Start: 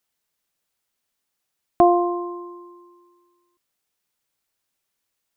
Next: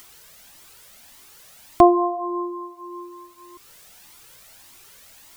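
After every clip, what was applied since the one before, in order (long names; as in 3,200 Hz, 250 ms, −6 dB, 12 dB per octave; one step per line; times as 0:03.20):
in parallel at +0.5 dB: upward compression, threshold −18 dBFS
on the sum: flanger whose copies keep moving one way rising 1.7 Hz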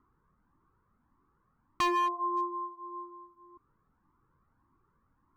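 low-pass that shuts in the quiet parts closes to 480 Hz, open at −20 dBFS
drawn EQ curve 300 Hz 0 dB, 660 Hz −18 dB, 1,100 Hz +10 dB, 2,700 Hz −12 dB
hard clipping −17.5 dBFS, distortion −5 dB
level −7.5 dB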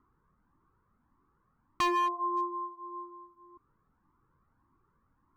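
no processing that can be heard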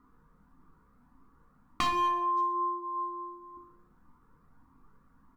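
repeating echo 60 ms, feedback 56%, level −13 dB
downward compressor 6 to 1, threshold −32 dBFS, peak gain reduction 8 dB
rectangular room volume 380 cubic metres, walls furnished, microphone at 1.8 metres
level +4.5 dB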